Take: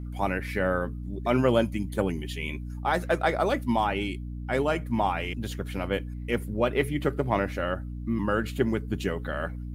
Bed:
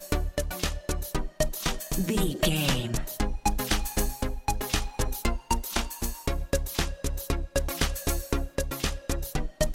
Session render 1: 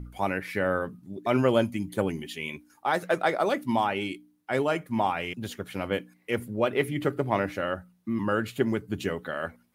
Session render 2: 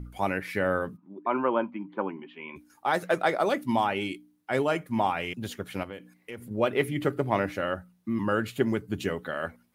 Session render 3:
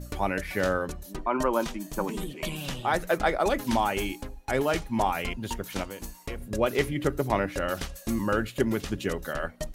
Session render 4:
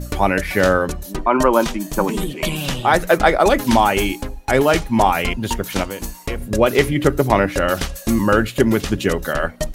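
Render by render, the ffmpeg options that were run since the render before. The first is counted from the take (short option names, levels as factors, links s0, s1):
-af "bandreject=f=60:t=h:w=4,bandreject=f=120:t=h:w=4,bandreject=f=180:t=h:w=4,bandreject=f=240:t=h:w=4,bandreject=f=300:t=h:w=4"
-filter_complex "[0:a]asplit=3[s0][s1][s2];[s0]afade=t=out:st=0.96:d=0.02[s3];[s1]highpass=f=230:w=0.5412,highpass=f=230:w=1.3066,equalizer=f=250:t=q:w=4:g=-4,equalizer=f=440:t=q:w=4:g=-7,equalizer=f=640:t=q:w=4:g=-6,equalizer=f=990:t=q:w=4:g=10,equalizer=f=1900:t=q:w=4:g=-9,lowpass=f=2200:w=0.5412,lowpass=f=2200:w=1.3066,afade=t=in:st=0.96:d=0.02,afade=t=out:st=2.55:d=0.02[s4];[s2]afade=t=in:st=2.55:d=0.02[s5];[s3][s4][s5]amix=inputs=3:normalize=0,asettb=1/sr,asplit=3[s6][s7][s8];[s6]atrim=end=5.834[s9];[s7]atrim=start=5.83:end=6.51,asetpts=PTS-STARTPTS,afade=t=in:d=0.004:c=qsin,afade=t=out:st=0.676:d=0.004:c=qsin,acompressor=threshold=0.0112:ratio=3:attack=3.2:release=140:knee=1:detection=peak[s10];[s8]atrim=start=6.506[s11];[s9][s10]acrossfade=d=0.004:c1=hsin:c2=qsin[s12];[s12][s11]acrossfade=d=0.004:c1=qsin:c2=hsin"
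-filter_complex "[1:a]volume=0.355[s0];[0:a][s0]amix=inputs=2:normalize=0"
-af "volume=3.55,alimiter=limit=0.891:level=0:latency=1"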